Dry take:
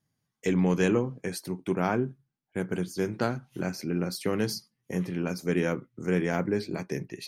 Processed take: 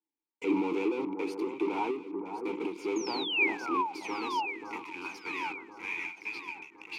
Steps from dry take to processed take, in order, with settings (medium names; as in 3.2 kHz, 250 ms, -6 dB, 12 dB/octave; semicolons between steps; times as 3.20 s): high-pass sweep 450 Hz -> 2.6 kHz, 2.95–6.90 s; in parallel at -5.5 dB: fuzz box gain 46 dB, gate -45 dBFS; on the sum: painted sound fall, 3.08–4.09 s, 740–6500 Hz -14 dBFS; vowel filter u; echo whose repeats swap between lows and highs 554 ms, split 1.4 kHz, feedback 67%, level -7.5 dB; speed mistake 24 fps film run at 25 fps; endings held to a fixed fall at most 130 dB/s